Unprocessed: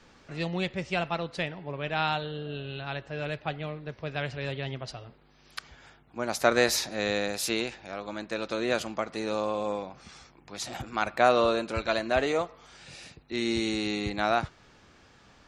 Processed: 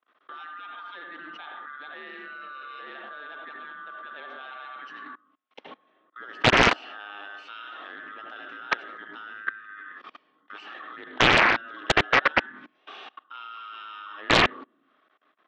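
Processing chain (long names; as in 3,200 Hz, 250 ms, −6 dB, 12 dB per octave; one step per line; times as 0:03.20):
neighbouring bands swapped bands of 1,000 Hz
noise gate −51 dBFS, range −16 dB
on a send at −4.5 dB: convolution reverb RT60 0.35 s, pre-delay 72 ms
on the sum: output level in coarse steps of 24 dB
Chebyshev band-pass filter 270–3,100 Hz, order 3
highs frequency-modulated by the lows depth 0.93 ms
level +8 dB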